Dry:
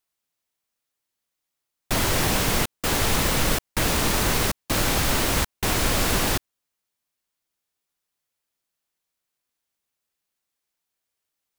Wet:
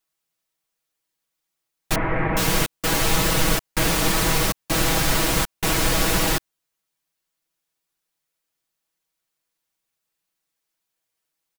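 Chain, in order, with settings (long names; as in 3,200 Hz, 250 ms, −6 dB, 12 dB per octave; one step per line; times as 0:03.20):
0:01.95–0:02.37: elliptic low-pass filter 2,200 Hz, stop band 80 dB
comb filter 6.2 ms, depth 74%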